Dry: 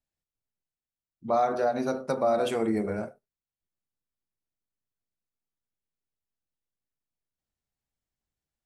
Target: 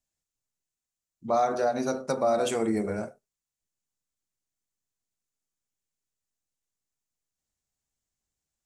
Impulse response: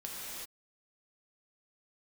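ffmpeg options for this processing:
-af "equalizer=f=7000:w=1.5:g=11"

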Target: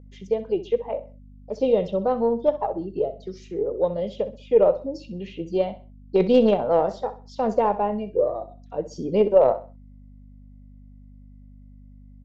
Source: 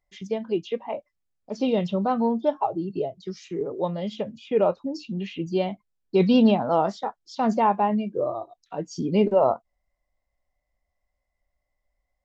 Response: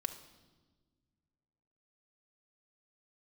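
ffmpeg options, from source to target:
-af "aeval=exprs='val(0)+0.01*(sin(2*PI*50*n/s)+sin(2*PI*2*50*n/s)/2+sin(2*PI*3*50*n/s)/3+sin(2*PI*4*50*n/s)/4+sin(2*PI*5*50*n/s)/5)':c=same,aeval=exprs='0.398*(cos(1*acos(clip(val(0)/0.398,-1,1)))-cos(1*PI/2))+0.0398*(cos(2*acos(clip(val(0)/0.398,-1,1)))-cos(2*PI/2))+0.0501*(cos(3*acos(clip(val(0)/0.398,-1,1)))-cos(3*PI/2))+0.0141*(cos(5*acos(clip(val(0)/0.398,-1,1)))-cos(5*PI/2))':c=same,equalizer=f=500:t=o:w=0.72:g=13,aecho=1:1:64|128|192:0.2|0.0599|0.018,volume=0.668"

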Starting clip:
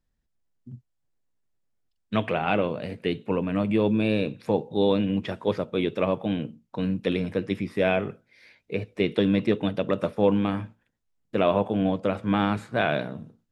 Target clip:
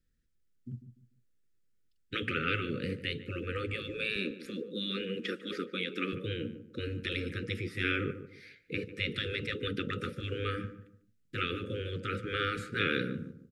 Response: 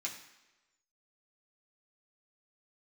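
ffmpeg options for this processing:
-filter_complex "[0:a]asettb=1/sr,asplit=3[s0][s1][s2];[s0]atrim=end=4.164[s3];[s1]atrim=start=4.16:end=6.13,asetpts=PTS-STARTPTS,afade=t=in:d=0.004:c=qsin,afade=t=out:st=1.966:d=0.004:c=qsin,highpass=f=250:w=0.5412,highpass=f=250:w=1.3066[s4];[s2]atrim=start=6.126[s5];[s3][s4]acrossfade=d=0.004:c1=hsin:c2=qsin[s6];[s6][s5]acrossfade=d=0.004:c1=qsin:c2=hsin,afftfilt=real='re*lt(hypot(re,im),0.2)':imag='im*lt(hypot(re,im),0.2)':win_size=1024:overlap=0.75,asuperstop=centerf=810:order=20:qfactor=1.2,asplit=2[s7][s8];[s8]adelay=147,lowpass=f=1100:p=1,volume=0.282,asplit=2[s9][s10];[s10]adelay=147,lowpass=f=1100:p=1,volume=0.32,asplit=2[s11][s12];[s12]adelay=147,lowpass=f=1100:p=1,volume=0.32[s13];[s7][s9][s11][s13]amix=inputs=4:normalize=0"

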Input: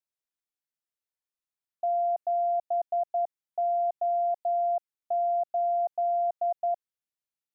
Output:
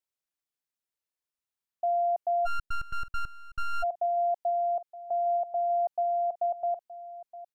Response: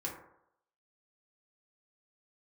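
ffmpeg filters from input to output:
-filter_complex "[0:a]aecho=1:1:920:0.15,asplit=3[s0][s1][s2];[s0]afade=t=out:st=2.45:d=0.02[s3];[s1]aeval=exprs='abs(val(0))':c=same,afade=t=in:st=2.45:d=0.02,afade=t=out:st=3.82:d=0.02[s4];[s2]afade=t=in:st=3.82:d=0.02[s5];[s3][s4][s5]amix=inputs=3:normalize=0"

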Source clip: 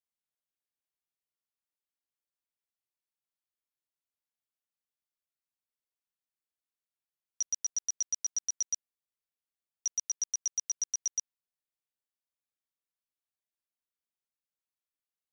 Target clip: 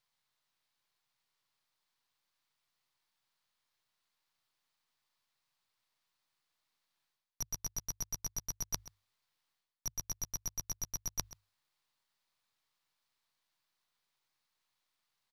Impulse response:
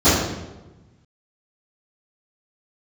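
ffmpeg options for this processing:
-af "equalizer=f=4800:t=o:w=0.77:g=3.5,aeval=exprs='max(val(0),0)':c=same,bandreject=f=50:t=h:w=6,bandreject=f=100:t=h:w=6,areverse,acompressor=threshold=0.00447:ratio=6,areverse,equalizer=f=125:t=o:w=1:g=9,equalizer=f=1000:t=o:w=1:g=10,equalizer=f=2000:t=o:w=1:g=5,equalizer=f=4000:t=o:w=1:g=8,aecho=1:1:132:0.141,volume=2.66"

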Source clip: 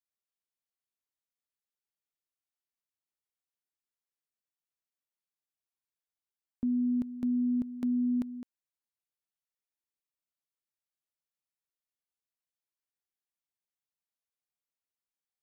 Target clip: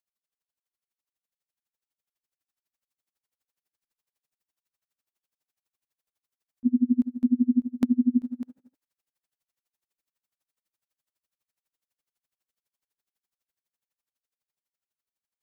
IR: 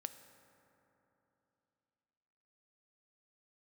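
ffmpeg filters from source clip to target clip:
-filter_complex "[0:a]dynaudnorm=f=680:g=7:m=2.11,asplit=2[s0][s1];[1:a]atrim=start_sample=2205,afade=t=out:st=0.36:d=0.01,atrim=end_sample=16317[s2];[s1][s2]afir=irnorm=-1:irlink=0,volume=1.5[s3];[s0][s3]amix=inputs=2:normalize=0,aeval=exprs='val(0)*pow(10,-33*(0.5-0.5*cos(2*PI*12*n/s))/20)':c=same"

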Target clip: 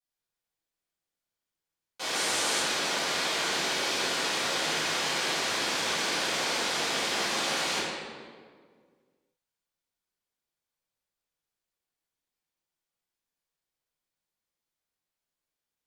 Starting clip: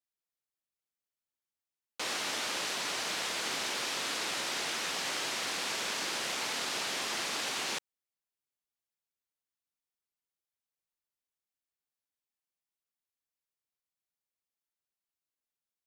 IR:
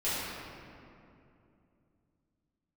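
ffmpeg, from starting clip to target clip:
-filter_complex "[0:a]asettb=1/sr,asplit=3[s0][s1][s2];[s0]atrim=end=2.144[s3];[s1]atrim=start=2.14:end=2.6,asetpts=PTS-STARTPTS,afade=t=in:d=0.004:c=qsin,afade=t=out:st=0.456:d=0.004:c=qsin,equalizer=f=8900:t=o:w=0.87:g=9[s4];[s2]atrim=start=2.596[s5];[s3][s4]acrossfade=d=0.004:c1=hsin:c2=qsin[s6];[s6][s5]acrossfade=d=0.004:c1=qsin:c2=hsin[s7];[1:a]atrim=start_sample=2205,asetrate=74970,aresample=44100[s8];[s7][s8]afir=irnorm=-1:irlink=0,volume=1.12"

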